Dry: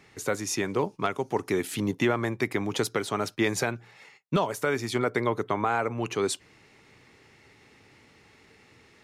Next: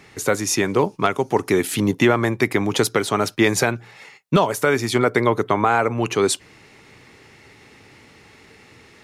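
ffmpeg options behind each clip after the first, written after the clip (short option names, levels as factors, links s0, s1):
-af "equalizer=f=11000:t=o:w=0.52:g=2.5,volume=2.66"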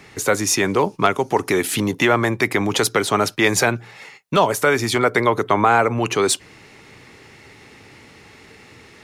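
-filter_complex "[0:a]acrossover=split=490|4900[s0][s1][s2];[s0]alimiter=limit=0.126:level=0:latency=1[s3];[s2]acrusher=bits=6:mode=log:mix=0:aa=0.000001[s4];[s3][s1][s4]amix=inputs=3:normalize=0,volume=1.41"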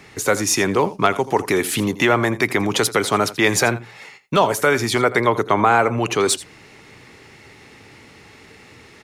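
-af "aecho=1:1:83:0.15"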